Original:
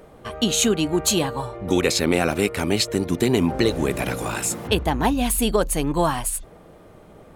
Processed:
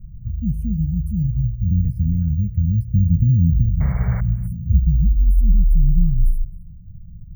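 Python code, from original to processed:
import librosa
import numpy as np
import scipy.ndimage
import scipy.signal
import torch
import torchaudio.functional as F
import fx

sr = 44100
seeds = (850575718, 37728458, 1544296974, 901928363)

p1 = scipy.signal.sosfilt(scipy.signal.cheby2(4, 40, [320.0, 7600.0], 'bandstop', fs=sr, output='sos'), x)
p2 = fx.spec_paint(p1, sr, seeds[0], shape='noise', start_s=3.8, length_s=0.41, low_hz=390.0, high_hz=2300.0, level_db=-38.0)
p3 = fx.comb(p2, sr, ms=5.7, depth=0.79, at=(4.79, 5.61), fade=0.02)
p4 = fx.rider(p3, sr, range_db=10, speed_s=0.5)
p5 = (np.kron(scipy.signal.resample_poly(p4, 1, 2), np.eye(2)[0]) * 2)[:len(p4)]
p6 = fx.riaa(p5, sr, side='playback')
p7 = p6 + fx.echo_single(p6, sr, ms=262, db=-22.5, dry=0)
y = fx.env_flatten(p7, sr, amount_pct=50, at=(2.93, 3.61), fade=0.02)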